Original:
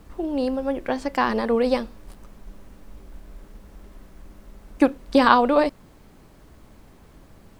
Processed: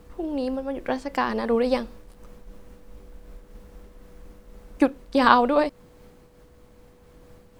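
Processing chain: whistle 490 Hz -52 dBFS; random flutter of the level, depth 55%

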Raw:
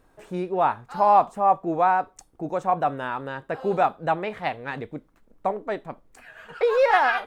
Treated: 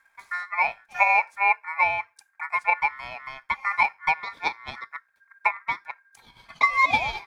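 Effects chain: transient shaper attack +8 dB, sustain -2 dB; static phaser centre 340 Hz, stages 6; ring modulator 1.6 kHz

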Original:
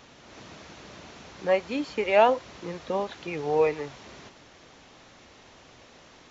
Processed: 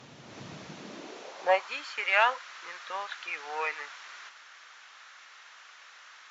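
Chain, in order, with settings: Chebyshev shaper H 4 -27 dB, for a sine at -8 dBFS; high-pass sweep 130 Hz -> 1.4 kHz, 0.62–1.77 s

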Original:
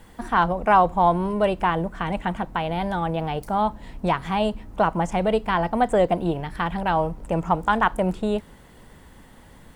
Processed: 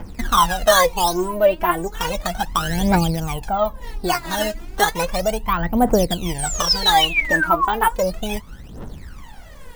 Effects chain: in parallel at +3 dB: compression, threshold -29 dBFS, peak gain reduction 16 dB; on the sum: decimation with a swept rate 11×, swing 160% 0.49 Hz; painted sound fall, 6.38–7.75 s, 880–9100 Hz -20 dBFS; phaser 0.34 Hz, delay 3.4 ms, feedback 79%; trim -4.5 dB

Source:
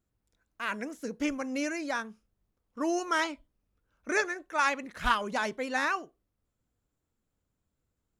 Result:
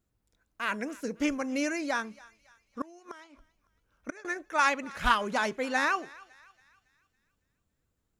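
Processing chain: 2.81–4.25 s: inverted gate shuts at -22 dBFS, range -25 dB; thinning echo 278 ms, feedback 49%, high-pass 870 Hz, level -20.5 dB; trim +2 dB

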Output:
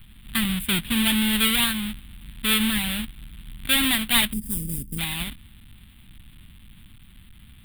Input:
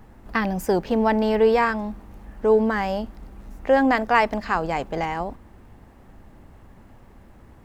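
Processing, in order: square wave that keeps the level; time-frequency box 4.32–4.99 s, 530–4700 Hz -26 dB; FFT filter 220 Hz 0 dB, 480 Hz -23 dB, 3.5 kHz +11 dB, 6 kHz -24 dB, 8.9 kHz +8 dB; trim -4.5 dB

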